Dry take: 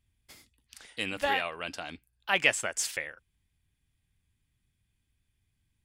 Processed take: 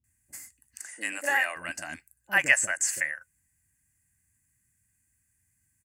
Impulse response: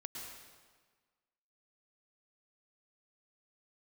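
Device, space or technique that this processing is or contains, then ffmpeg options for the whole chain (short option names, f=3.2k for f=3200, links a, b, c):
budget condenser microphone: -filter_complex "[0:a]asettb=1/sr,asplit=3[a][b][c];[a]atrim=end=0.794[d];[b]atrim=start=0.79:end=1.56,asetpts=PTS-STARTPTS,afade=t=in:d=0.004:c=qsin,afade=t=out:st=0.766:d=0.004:c=qsin,highpass=f=280:w=0.5412,highpass=f=280:w=1.3066[e];[c]atrim=start=1.556[f];[d][e]acrossfade=d=0.004:c1=hsin:c2=qsin[g];[g][f]acrossfade=d=0.004:c1=qsin:c2=hsin,acrossover=split=5000[h][i];[i]acompressor=threshold=-46dB:ratio=4:attack=1:release=60[j];[h][j]amix=inputs=2:normalize=0,highpass=66,superequalizer=7b=0.398:11b=2.82:13b=0.282:15b=1.78,highshelf=f=6.1k:t=q:w=1.5:g=12,acrossover=split=510[k][l];[l]adelay=40[m];[k][m]amix=inputs=2:normalize=0"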